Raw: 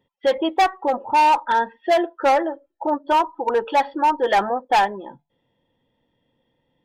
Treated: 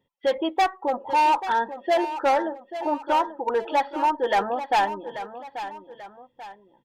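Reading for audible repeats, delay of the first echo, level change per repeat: 2, 0.837 s, -7.5 dB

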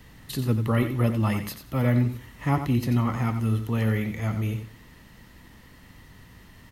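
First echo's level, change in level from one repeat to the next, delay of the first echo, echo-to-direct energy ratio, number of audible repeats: -9.0 dB, -15.0 dB, 90 ms, -9.0 dB, 2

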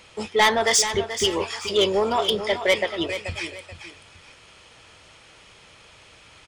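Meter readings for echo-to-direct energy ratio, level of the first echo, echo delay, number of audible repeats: -10.0 dB, -10.5 dB, 0.433 s, 2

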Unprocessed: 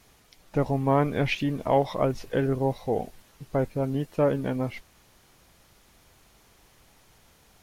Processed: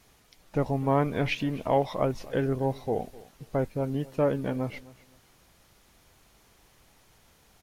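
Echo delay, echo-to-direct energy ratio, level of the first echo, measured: 0.257 s, -20.5 dB, -20.5 dB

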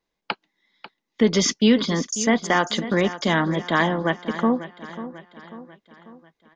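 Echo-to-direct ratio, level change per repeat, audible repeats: -12.5 dB, -6.0 dB, 4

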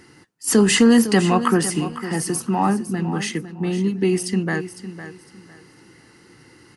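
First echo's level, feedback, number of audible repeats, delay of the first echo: -12.5 dB, 25%, 2, 0.506 s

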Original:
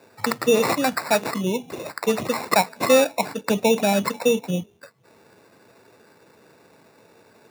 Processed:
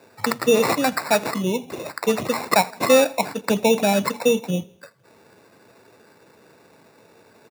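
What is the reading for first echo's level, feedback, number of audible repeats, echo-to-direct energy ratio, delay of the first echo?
-23.0 dB, 47%, 2, -22.0 dB, 82 ms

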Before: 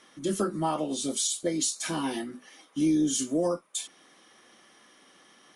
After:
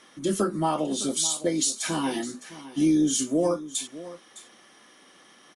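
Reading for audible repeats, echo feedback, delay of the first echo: 1, no steady repeat, 0.61 s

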